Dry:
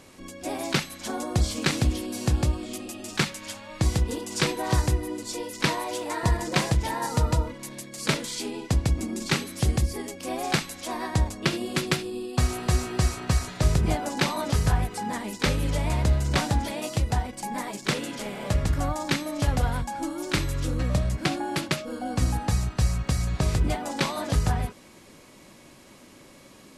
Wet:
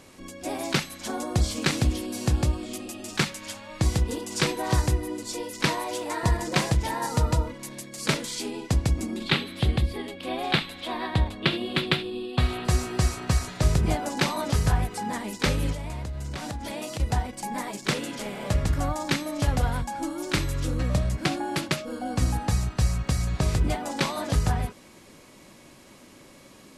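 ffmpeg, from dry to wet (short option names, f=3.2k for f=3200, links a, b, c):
-filter_complex "[0:a]asettb=1/sr,asplit=3[a][b][c];[a]atrim=end=9.164[d];[b]atrim=start=9.16:end=12.65,asetpts=PTS-STARTPTS,afade=t=in:d=0.004:c=qsin,afade=t=out:st=3.486:d=0.004:c=qsin,highshelf=f=4.7k:t=q:w=3:g=-9[e];[c]atrim=start=12.646[f];[d][e]acrossfade=d=0.004:c1=hsin:c2=qsin[g];[g][f]acrossfade=d=0.004:c1=qsin:c2=hsin,asettb=1/sr,asplit=3[h][i][j];[h]atrim=end=15.724[k];[i]atrim=start=15.72:end=17,asetpts=PTS-STARTPTS,afade=t=in:d=0.004:c=qsin,afade=t=out:st=1.276:d=0.004:c=qsin,acompressor=threshold=-29dB:ratio=12:attack=3.2:release=140:knee=1:detection=peak[l];[j]atrim=start=16.996[m];[k][l]acrossfade=d=0.004:c1=hsin:c2=qsin[n];[n][m]acrossfade=d=0.004:c1=qsin:c2=hsin"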